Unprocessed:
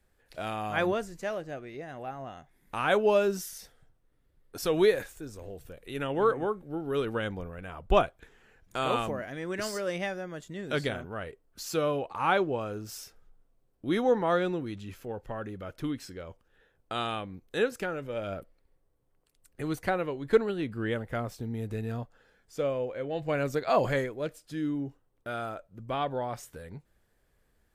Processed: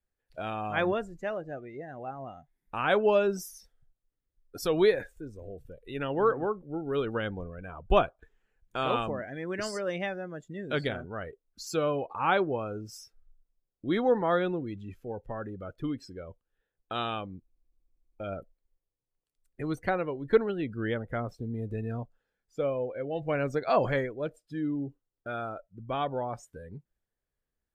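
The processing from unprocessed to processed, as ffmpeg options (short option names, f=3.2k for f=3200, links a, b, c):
-filter_complex "[0:a]asplit=11[a][b][c][d][e][f][g][h][i][j][k];[a]atrim=end=17.482[l];[b]atrim=start=17.398:end=17.482[m];[c]atrim=start=17.398:end=17.482[n];[d]atrim=start=17.398:end=17.482[o];[e]atrim=start=17.398:end=17.482[p];[f]atrim=start=17.398:end=17.482[q];[g]atrim=start=17.398:end=17.482[r];[h]atrim=start=17.398:end=17.482[s];[i]atrim=start=17.398:end=17.482[t];[j]atrim=start=17.398:end=17.482[u];[k]atrim=start=18.198[v];[l][m]acrossfade=d=0.004:c1=hsin:c2=hsin[w];[w][n]acrossfade=d=0.004:c1=hsin:c2=hsin[x];[x][o]acrossfade=d=0.004:c1=hsin:c2=hsin[y];[y][p]acrossfade=d=0.004:c1=hsin:c2=hsin[z];[z][q]acrossfade=d=0.004:c1=hsin:c2=hsin[aa];[aa][r]acrossfade=d=0.004:c1=hsin:c2=hsin[ab];[ab][s]acrossfade=d=0.004:c1=hsin:c2=hsin[ac];[ac][t]acrossfade=d=0.004:c1=hsin:c2=hsin[ad];[ad][u]acrossfade=d=0.004:c1=hsin:c2=hsin[ae];[ae][v]acrossfade=d=0.004:c1=hsin:c2=hsin,afftdn=nr=18:nf=-44"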